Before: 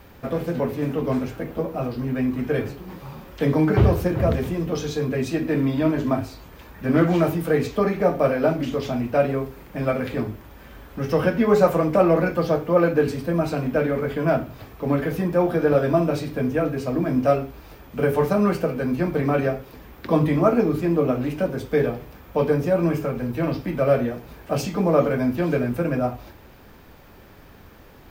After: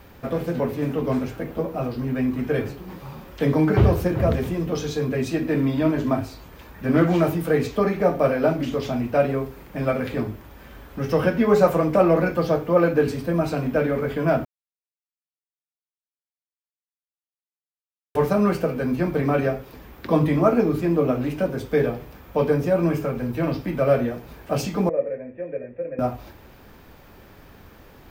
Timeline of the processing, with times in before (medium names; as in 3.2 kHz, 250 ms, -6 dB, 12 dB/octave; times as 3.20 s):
14.45–18.15 s: mute
24.89–25.99 s: cascade formant filter e